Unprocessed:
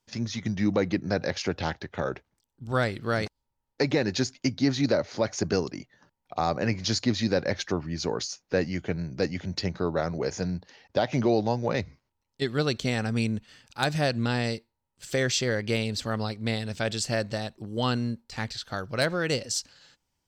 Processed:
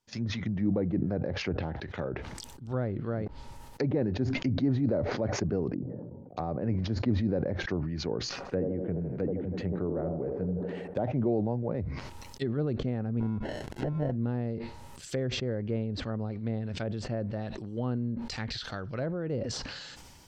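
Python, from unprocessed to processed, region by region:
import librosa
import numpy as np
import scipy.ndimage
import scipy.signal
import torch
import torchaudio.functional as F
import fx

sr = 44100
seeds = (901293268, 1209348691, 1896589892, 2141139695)

y = fx.chain(x, sr, fx.cheby1_bandpass(low_hz=100.0, high_hz=510.0, order=3),
    fx.sustainer(db_per_s=120.0), at=(5.74, 6.37))
y = fx.chain(y, sr, fx.air_absorb(metres=260.0),
    fx.echo_wet_bandpass(ms=80, feedback_pct=63, hz=460.0, wet_db=-3.5),
    fx.resample_linear(factor=4), at=(8.29, 11.04))
y = fx.chain(y, sr, fx.env_phaser(low_hz=320.0, high_hz=4400.0, full_db=-22.0),
    fx.sample_hold(seeds[0], rate_hz=1200.0, jitter_pct=0), at=(13.2, 14.12))
y = fx.env_lowpass_down(y, sr, base_hz=780.0, full_db=-24.5)
y = fx.dynamic_eq(y, sr, hz=930.0, q=0.75, threshold_db=-43.0, ratio=4.0, max_db=-5)
y = fx.sustainer(y, sr, db_per_s=29.0)
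y = y * 10.0 ** (-3.0 / 20.0)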